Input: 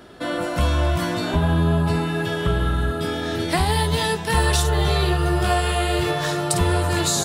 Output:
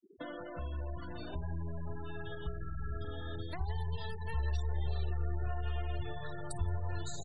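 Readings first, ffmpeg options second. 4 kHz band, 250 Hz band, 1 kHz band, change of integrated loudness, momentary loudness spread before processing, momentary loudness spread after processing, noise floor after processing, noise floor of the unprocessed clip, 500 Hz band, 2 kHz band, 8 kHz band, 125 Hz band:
-25.5 dB, -23.5 dB, -22.5 dB, -18.5 dB, 5 LU, 7 LU, -44 dBFS, -27 dBFS, -22.0 dB, -22.5 dB, -27.0 dB, -16.0 dB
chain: -filter_complex "[0:a]aeval=exprs='(tanh(3.16*val(0)+0.45)-tanh(0.45))/3.16':c=same,asplit=2[s0][s1];[s1]aecho=0:1:168|336|504|672|840|1008:0.316|0.168|0.0888|0.0471|0.025|0.0132[s2];[s0][s2]amix=inputs=2:normalize=0,acompressor=threshold=0.0158:ratio=4,aeval=exprs='sgn(val(0))*max(abs(val(0))-0.00188,0)':c=same,bandreject=f=60:t=h:w=6,bandreject=f=120:t=h:w=6,bandreject=f=180:t=h:w=6,bandreject=f=240:t=h:w=6,asubboost=boost=8:cutoff=81,afftfilt=real='re*gte(hypot(re,im),0.0178)':imag='im*gte(hypot(re,im),0.0178)':win_size=1024:overlap=0.75,volume=0.562"

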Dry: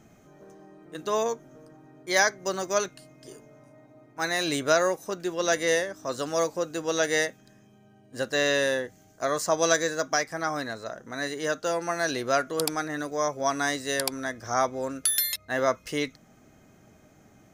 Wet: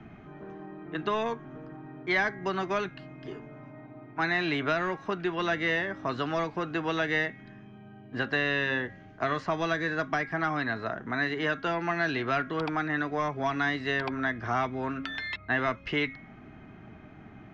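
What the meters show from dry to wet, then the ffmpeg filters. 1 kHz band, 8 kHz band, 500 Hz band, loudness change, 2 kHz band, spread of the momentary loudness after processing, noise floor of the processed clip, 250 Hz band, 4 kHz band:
-1.0 dB, under -20 dB, -5.5 dB, -2.5 dB, +1.0 dB, 20 LU, -50 dBFS, +1.0 dB, -5.5 dB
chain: -filter_complex "[0:a]asplit=2[s0][s1];[s1]volume=16.8,asoftclip=hard,volume=0.0596,volume=0.355[s2];[s0][s2]amix=inputs=2:normalize=0,equalizer=f=530:w=4.4:g=-14.5,bandreject=f=273.5:t=h:w=4,bandreject=f=547:t=h:w=4,bandreject=f=820.5:t=h:w=4,bandreject=f=1094:t=h:w=4,bandreject=f=1367.5:t=h:w=4,bandreject=f=1641:t=h:w=4,bandreject=f=1914.5:t=h:w=4,bandreject=f=2188:t=h:w=4,acrossover=split=170|480|2100[s3][s4][s5][s6];[s3]acompressor=threshold=0.00501:ratio=4[s7];[s4]acompressor=threshold=0.00794:ratio=4[s8];[s5]acompressor=threshold=0.0141:ratio=4[s9];[s6]acompressor=threshold=0.0251:ratio=4[s10];[s7][s8][s9][s10]amix=inputs=4:normalize=0,lowpass=f=2900:w=0.5412,lowpass=f=2900:w=1.3066,volume=2"

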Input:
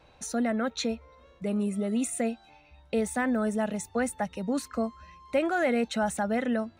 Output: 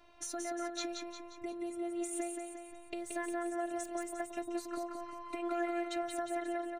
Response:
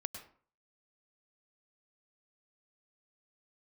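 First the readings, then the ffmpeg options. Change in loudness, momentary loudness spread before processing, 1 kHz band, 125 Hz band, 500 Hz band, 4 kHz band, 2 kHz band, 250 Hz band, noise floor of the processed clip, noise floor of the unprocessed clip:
-9.5 dB, 6 LU, -6.5 dB, under -25 dB, -9.0 dB, -7.0 dB, -11.0 dB, -11.0 dB, -52 dBFS, -58 dBFS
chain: -filter_complex "[0:a]acompressor=threshold=0.0224:ratio=6,afftfilt=real='hypot(re,im)*cos(PI*b)':imag='0':win_size=512:overlap=0.75,asplit=2[s0][s1];[s1]aecho=0:1:177|354|531|708|885|1062:0.562|0.276|0.135|0.0662|0.0324|0.0159[s2];[s0][s2]amix=inputs=2:normalize=0"

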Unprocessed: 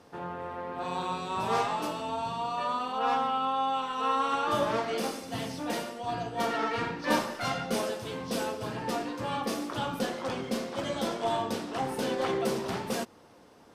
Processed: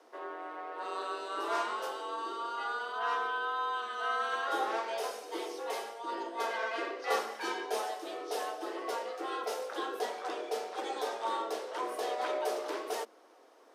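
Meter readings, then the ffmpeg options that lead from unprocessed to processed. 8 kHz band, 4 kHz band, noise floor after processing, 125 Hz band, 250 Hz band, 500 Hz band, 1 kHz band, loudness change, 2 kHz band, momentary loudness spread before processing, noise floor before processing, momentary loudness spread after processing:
-5.0 dB, -5.0 dB, -59 dBFS, under -40 dB, -12.0 dB, -4.0 dB, -4.0 dB, -4.5 dB, -0.5 dB, 7 LU, -55 dBFS, 6 LU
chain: -af "lowshelf=f=200:g=6,afreqshift=220,volume=0.531"

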